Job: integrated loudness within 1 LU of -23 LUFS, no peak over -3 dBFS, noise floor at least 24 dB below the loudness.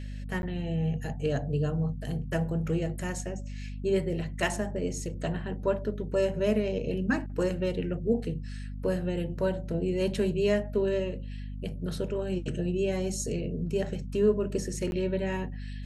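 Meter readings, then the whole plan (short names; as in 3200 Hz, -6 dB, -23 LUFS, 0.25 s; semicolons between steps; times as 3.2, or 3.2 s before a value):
dropouts 2; longest dropout 11 ms; hum 50 Hz; harmonics up to 250 Hz; hum level -35 dBFS; loudness -30.5 LUFS; peak -13.5 dBFS; loudness target -23.0 LUFS
-> interpolate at 0.42/14.91, 11 ms; de-hum 50 Hz, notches 5; gain +7.5 dB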